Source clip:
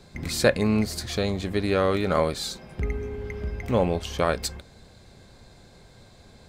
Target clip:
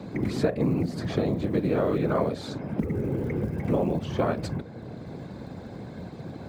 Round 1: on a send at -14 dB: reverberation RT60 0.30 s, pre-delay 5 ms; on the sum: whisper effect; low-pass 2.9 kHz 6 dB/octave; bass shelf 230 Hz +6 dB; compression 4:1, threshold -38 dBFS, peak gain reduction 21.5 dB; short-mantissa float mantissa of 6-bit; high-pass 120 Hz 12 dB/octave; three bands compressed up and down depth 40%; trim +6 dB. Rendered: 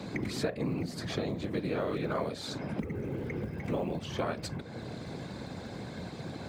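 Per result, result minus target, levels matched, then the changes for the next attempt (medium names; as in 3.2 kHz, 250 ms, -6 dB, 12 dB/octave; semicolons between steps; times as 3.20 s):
4 kHz band +10.0 dB; compression: peak gain reduction +9 dB
change: low-pass 800 Hz 6 dB/octave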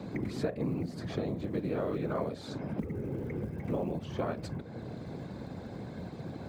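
compression: peak gain reduction +8 dB
change: compression 4:1, threshold -27 dBFS, peak gain reduction 12 dB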